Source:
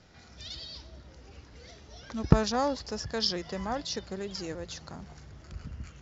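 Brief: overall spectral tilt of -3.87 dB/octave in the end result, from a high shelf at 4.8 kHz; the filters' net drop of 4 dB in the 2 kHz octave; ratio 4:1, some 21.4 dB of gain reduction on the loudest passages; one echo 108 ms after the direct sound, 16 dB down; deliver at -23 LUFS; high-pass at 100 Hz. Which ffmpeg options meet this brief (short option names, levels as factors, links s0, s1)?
-af "highpass=100,equalizer=f=2000:t=o:g=-6,highshelf=f=4800:g=4.5,acompressor=threshold=0.00891:ratio=4,aecho=1:1:108:0.158,volume=11.9"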